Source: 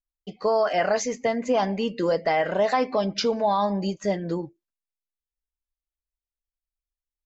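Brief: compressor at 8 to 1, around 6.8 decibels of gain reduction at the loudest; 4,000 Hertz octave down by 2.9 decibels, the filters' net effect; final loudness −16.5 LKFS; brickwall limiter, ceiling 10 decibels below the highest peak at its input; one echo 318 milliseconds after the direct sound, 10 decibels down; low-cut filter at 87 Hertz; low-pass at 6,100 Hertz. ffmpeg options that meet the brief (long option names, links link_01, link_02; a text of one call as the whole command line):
ffmpeg -i in.wav -af "highpass=87,lowpass=6100,equalizer=frequency=4000:width_type=o:gain=-3,acompressor=threshold=-25dB:ratio=8,alimiter=level_in=3dB:limit=-24dB:level=0:latency=1,volume=-3dB,aecho=1:1:318:0.316,volume=18.5dB" out.wav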